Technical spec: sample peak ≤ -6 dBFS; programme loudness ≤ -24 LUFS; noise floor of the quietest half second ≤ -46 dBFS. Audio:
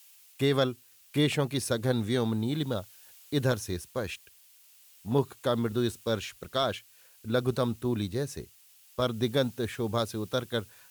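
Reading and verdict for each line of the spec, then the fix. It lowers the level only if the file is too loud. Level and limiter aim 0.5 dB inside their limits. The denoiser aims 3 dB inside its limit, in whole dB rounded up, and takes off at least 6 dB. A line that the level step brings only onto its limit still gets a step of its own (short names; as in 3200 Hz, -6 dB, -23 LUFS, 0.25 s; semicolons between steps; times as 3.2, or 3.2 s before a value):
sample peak -14.5 dBFS: OK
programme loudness -30.5 LUFS: OK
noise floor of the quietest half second -58 dBFS: OK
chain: none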